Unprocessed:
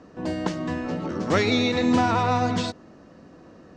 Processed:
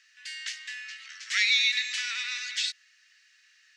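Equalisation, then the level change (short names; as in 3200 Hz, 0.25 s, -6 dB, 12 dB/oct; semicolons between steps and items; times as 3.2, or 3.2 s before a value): steep high-pass 1800 Hz 48 dB/oct; +5.0 dB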